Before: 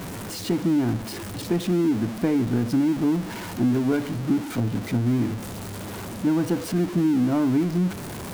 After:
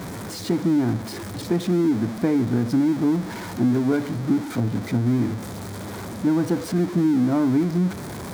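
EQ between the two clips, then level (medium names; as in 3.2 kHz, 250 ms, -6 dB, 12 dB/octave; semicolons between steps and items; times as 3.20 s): high-pass 52 Hz; peaking EQ 2.8 kHz -8 dB 0.27 oct; treble shelf 9.1 kHz -5.5 dB; +1.5 dB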